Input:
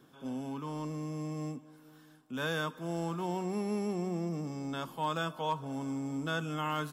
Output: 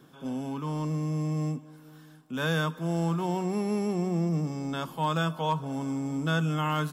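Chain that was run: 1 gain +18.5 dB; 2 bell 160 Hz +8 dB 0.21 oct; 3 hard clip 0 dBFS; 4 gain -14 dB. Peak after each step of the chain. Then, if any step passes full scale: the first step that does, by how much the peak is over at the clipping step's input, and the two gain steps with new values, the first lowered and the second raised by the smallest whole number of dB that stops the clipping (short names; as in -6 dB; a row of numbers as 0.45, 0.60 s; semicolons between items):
-4.5, -2.5, -2.5, -16.5 dBFS; no overload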